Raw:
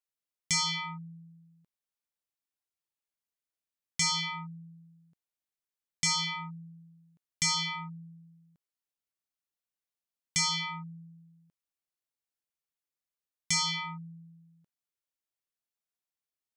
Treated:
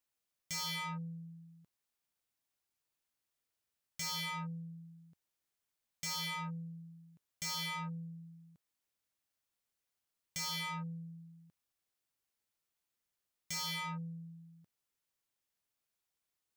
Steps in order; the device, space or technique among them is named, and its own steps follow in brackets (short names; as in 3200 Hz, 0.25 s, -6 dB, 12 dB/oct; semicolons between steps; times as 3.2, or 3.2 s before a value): open-reel tape (soft clip -40 dBFS, distortion -4 dB; bell 91 Hz +4.5 dB 1.16 oct; white noise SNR 46 dB); gain +2 dB